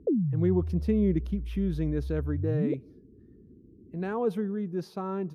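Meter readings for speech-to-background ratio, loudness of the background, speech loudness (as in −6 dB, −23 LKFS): 3.0 dB, −33.5 LKFS, −30.5 LKFS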